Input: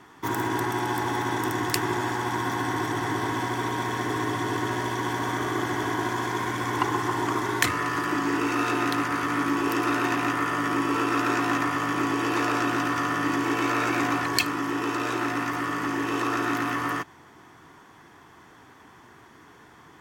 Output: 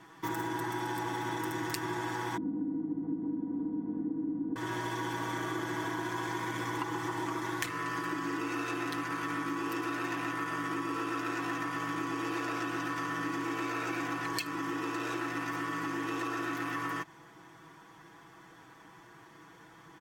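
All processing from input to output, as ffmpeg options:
ffmpeg -i in.wav -filter_complex "[0:a]asettb=1/sr,asplit=3[link_01][link_02][link_03];[link_01]atrim=end=2.374[link_04];[link_02]atrim=start=2.37:end=4.56,asetpts=PTS-STARTPTS,afade=type=in:duration=0.004:curve=qsin,afade=type=out:start_time=2.186:duration=0.004:curve=qsin,lowpass=frequency=260:width_type=q:width=3.2,aecho=1:1:4.1:0.85,atrim=end_sample=96579[link_05];[link_03]atrim=start=4.556[link_06];[link_04][link_05]acrossfade=duration=0.004:curve1=hsin:curve2=qsin[link_07];[link_07][link_06]acrossfade=duration=0.004:curve1=qsin:curve2=hsin,aecho=1:1:6.1:0.76,acompressor=threshold=-26dB:ratio=6,volume=-5.5dB" out.wav

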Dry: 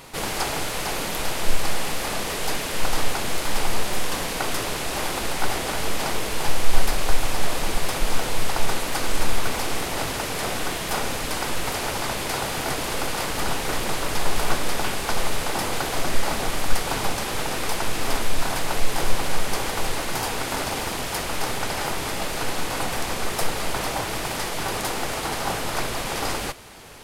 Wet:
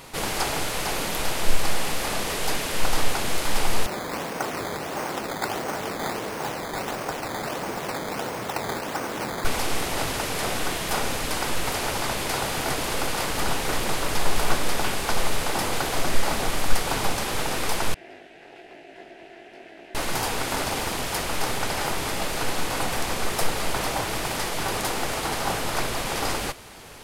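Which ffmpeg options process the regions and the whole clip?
ffmpeg -i in.wav -filter_complex "[0:a]asettb=1/sr,asplit=3[link_01][link_02][link_03];[link_01]atrim=end=3.864[link_04];[link_02]atrim=start=3.86:end=9.45,asetpts=PTS-STARTPTS,afade=type=in:duration=0.004:curve=qsin,afade=type=out:start_time=5.586:duration=0.004:curve=qsin,highpass=140,lowpass=2000,acrusher=samples=11:mix=1:aa=0.000001:lfo=1:lforange=11:lforate=1.5[link_05];[link_03]atrim=start=9.446[link_06];[link_04][link_05]acrossfade=duration=0.004:curve1=hsin:curve2=qsin[link_07];[link_07][link_06]acrossfade=duration=0.004:curve1=qsin:curve2=hsin,asettb=1/sr,asplit=3[link_08][link_09][link_10];[link_08]atrim=end=17.944[link_11];[link_09]atrim=start=17.94:end=19.95,asetpts=PTS-STARTPTS,afade=type=in:duration=0.004:curve=qsin,afade=type=out:start_time=2.006:duration=0.004:curve=qsin,asplit=3[link_12][link_13][link_14];[link_12]bandpass=frequency=530:width_type=q:width=8,volume=0dB[link_15];[link_13]bandpass=frequency=1840:width_type=q:width=8,volume=-6dB[link_16];[link_14]bandpass=frequency=2480:width_type=q:width=8,volume=-9dB[link_17];[link_15][link_16][link_17]amix=inputs=3:normalize=0,flanger=delay=18:depth=2:speed=1.1,aeval=exprs='val(0)*sin(2*PI*160*n/s)':channel_layout=same[link_18];[link_10]atrim=start=19.946[link_19];[link_11][link_18]acrossfade=duration=0.004:curve1=hsin:curve2=qsin[link_20];[link_20][link_19]acrossfade=duration=0.004:curve1=qsin:curve2=hsin" out.wav

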